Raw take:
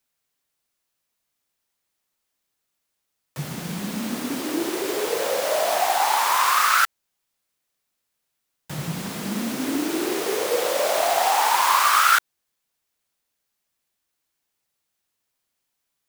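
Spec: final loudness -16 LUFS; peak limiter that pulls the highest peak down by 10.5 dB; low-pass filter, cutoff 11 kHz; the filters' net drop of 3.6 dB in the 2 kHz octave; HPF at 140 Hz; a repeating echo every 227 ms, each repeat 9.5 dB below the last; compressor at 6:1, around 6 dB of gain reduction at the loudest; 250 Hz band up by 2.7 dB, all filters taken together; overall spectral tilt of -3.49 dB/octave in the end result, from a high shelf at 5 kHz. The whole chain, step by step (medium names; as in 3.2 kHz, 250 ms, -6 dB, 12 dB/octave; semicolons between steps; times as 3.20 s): high-pass 140 Hz; low-pass 11 kHz; peaking EQ 250 Hz +4 dB; peaking EQ 2 kHz -6.5 dB; treble shelf 5 kHz +8.5 dB; compression 6:1, threshold -21 dBFS; peak limiter -22.5 dBFS; feedback delay 227 ms, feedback 33%, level -9.5 dB; trim +14.5 dB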